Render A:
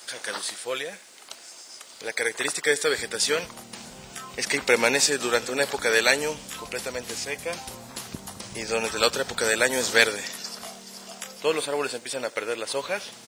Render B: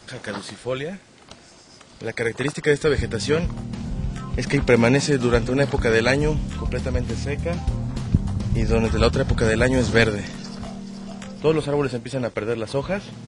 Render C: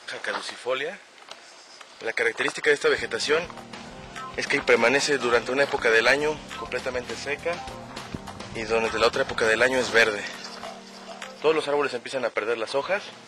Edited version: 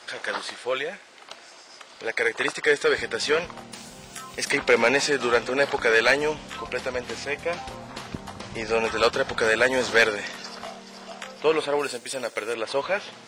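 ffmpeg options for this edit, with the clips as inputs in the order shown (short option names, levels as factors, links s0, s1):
-filter_complex "[0:a]asplit=2[s0][s1];[2:a]asplit=3[s2][s3][s4];[s2]atrim=end=3.722[s5];[s0]atrim=start=3.718:end=4.512[s6];[s3]atrim=start=4.508:end=11.792[s7];[s1]atrim=start=11.788:end=12.542[s8];[s4]atrim=start=12.538[s9];[s5][s6]acrossfade=d=0.004:c1=hsin:c2=hsin[s10];[s10][s7]acrossfade=d=0.004:c1=hsin:c2=hsin[s11];[s11][s8]acrossfade=d=0.004:c1=hsin:c2=hsin[s12];[s12][s9]acrossfade=d=0.004:c1=hsin:c2=hsin"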